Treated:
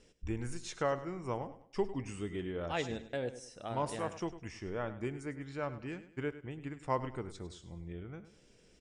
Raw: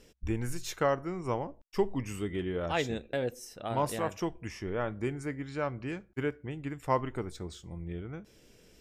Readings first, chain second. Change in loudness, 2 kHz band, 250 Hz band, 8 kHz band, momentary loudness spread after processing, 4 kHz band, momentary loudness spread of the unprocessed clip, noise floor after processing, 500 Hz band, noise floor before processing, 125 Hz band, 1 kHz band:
-5.0 dB, -5.0 dB, -5.0 dB, -5.0 dB, 9 LU, -5.0 dB, 9 LU, -64 dBFS, -5.0 dB, -60 dBFS, -5.0 dB, -5.0 dB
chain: steep low-pass 10 kHz 96 dB/octave; feedback delay 102 ms, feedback 35%, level -14 dB; trim -5 dB

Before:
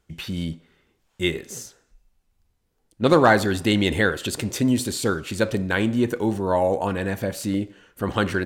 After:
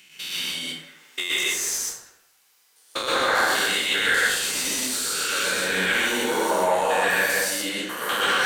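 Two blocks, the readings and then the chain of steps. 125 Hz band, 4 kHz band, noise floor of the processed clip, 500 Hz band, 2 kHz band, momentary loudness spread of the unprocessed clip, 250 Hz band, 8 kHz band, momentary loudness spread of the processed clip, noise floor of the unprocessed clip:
-17.5 dB, +7.5 dB, -61 dBFS, -4.0 dB, +5.5 dB, 14 LU, -11.5 dB, +9.5 dB, 10 LU, -70 dBFS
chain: spectrogram pixelated in time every 200 ms; high-pass 110 Hz; differentiator; level rider gain up to 8 dB; peak limiter -23.5 dBFS, peak gain reduction 10 dB; compression, threshold -36 dBFS, peak gain reduction 6.5 dB; overdrive pedal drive 14 dB, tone 3.3 kHz, clips at -24 dBFS; plate-style reverb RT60 0.8 s, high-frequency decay 0.5×, pre-delay 105 ms, DRR -6 dB; trim +8.5 dB

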